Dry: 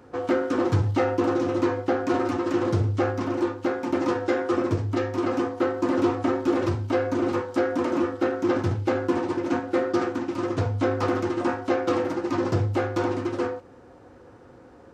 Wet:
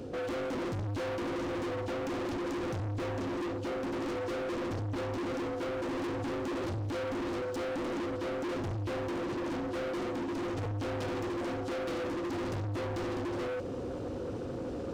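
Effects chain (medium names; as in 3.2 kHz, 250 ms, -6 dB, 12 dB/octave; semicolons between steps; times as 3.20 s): in parallel at +0.5 dB: compression, threshold -34 dBFS, peak gain reduction 15.5 dB; on the sum: high-order bell 1.3 kHz -12.5 dB; saturation -23.5 dBFS, distortion -10 dB; reverse; upward compressor, threshold -29 dBFS; reverse; overload inside the chain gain 35 dB; treble shelf 5.3 kHz -4.5 dB; trim +1.5 dB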